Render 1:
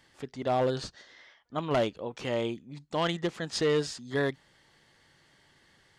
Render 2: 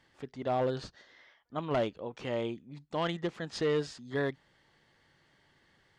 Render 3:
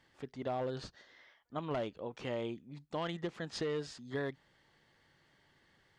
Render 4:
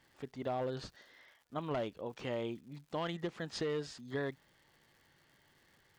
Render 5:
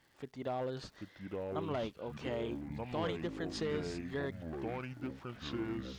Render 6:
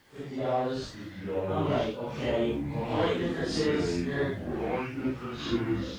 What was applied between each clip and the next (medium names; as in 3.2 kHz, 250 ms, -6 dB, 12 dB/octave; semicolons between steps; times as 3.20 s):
treble shelf 5.6 kHz -11 dB; trim -3 dB
compression, threshold -31 dBFS, peak gain reduction 5.5 dB; trim -2 dB
crackle 220 per s -57 dBFS
ever faster or slower copies 710 ms, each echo -5 st, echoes 3; trim -1 dB
phase randomisation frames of 200 ms; trim +9 dB